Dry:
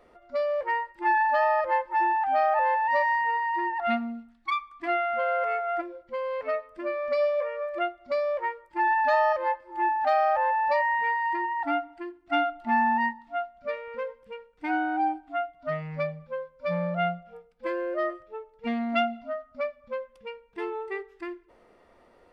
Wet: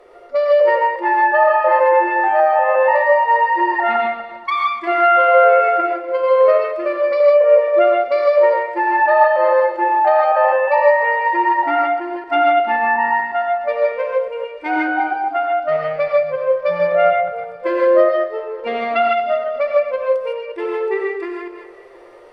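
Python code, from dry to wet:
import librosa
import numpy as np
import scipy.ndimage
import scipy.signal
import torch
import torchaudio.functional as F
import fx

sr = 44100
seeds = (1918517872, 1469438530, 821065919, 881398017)

p1 = fx.reverse_delay_fb(x, sr, ms=120, feedback_pct=45, wet_db=-9.5)
p2 = fx.env_lowpass_down(p1, sr, base_hz=1900.0, full_db=-19.0)
p3 = fx.level_steps(p2, sr, step_db=15)
p4 = p2 + F.gain(torch.from_numpy(p3), -1.0).numpy()
p5 = fx.low_shelf_res(p4, sr, hz=300.0, db=-8.5, q=3.0)
p6 = p5 + fx.echo_single(p5, sr, ms=719, db=-23.0, dry=0)
p7 = fx.rev_gated(p6, sr, seeds[0], gate_ms=180, shape='rising', drr_db=-1.5)
y = F.gain(torch.from_numpy(p7), 3.5).numpy()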